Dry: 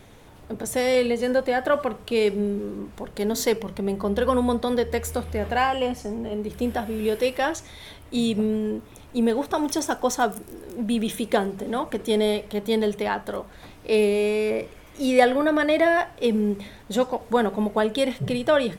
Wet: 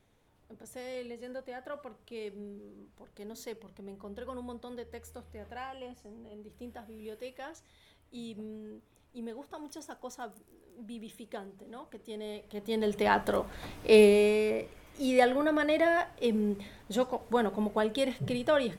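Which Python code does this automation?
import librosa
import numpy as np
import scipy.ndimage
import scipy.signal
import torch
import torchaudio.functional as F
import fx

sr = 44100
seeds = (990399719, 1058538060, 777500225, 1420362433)

y = fx.gain(x, sr, db=fx.line((12.2, -20.0), (12.77, -9.0), (13.15, 1.0), (14.01, 1.0), (14.58, -7.0)))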